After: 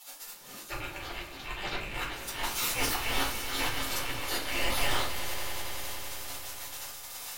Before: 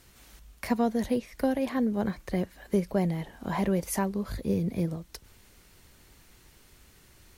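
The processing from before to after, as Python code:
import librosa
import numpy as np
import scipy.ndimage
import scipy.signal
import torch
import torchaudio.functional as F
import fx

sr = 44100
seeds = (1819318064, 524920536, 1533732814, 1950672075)

p1 = fx.rattle_buzz(x, sr, strikes_db=-41.0, level_db=-25.0)
p2 = fx.spec_gate(p1, sr, threshold_db=-25, keep='weak')
p3 = fx.lowpass(p2, sr, hz=4200.0, slope=24, at=(0.77, 1.76))
p4 = fx.over_compress(p3, sr, threshold_db=-49.0, ratio=-1.0)
p5 = p3 + F.gain(torch.from_numpy(p4), 2.0).numpy()
p6 = fx.auto_swell(p5, sr, attack_ms=293.0)
p7 = fx.leveller(p6, sr, passes=3, at=(2.43, 2.97))
p8 = np.clip(p7, -10.0 ** (-39.0 / 20.0), 10.0 ** (-39.0 / 20.0))
p9 = p8 + fx.echo_swell(p8, sr, ms=93, loudest=5, wet_db=-15.0, dry=0)
p10 = fx.room_shoebox(p9, sr, seeds[0], volume_m3=230.0, walls='furnished', distance_m=4.3)
y = F.gain(torch.from_numpy(p10), 6.5).numpy()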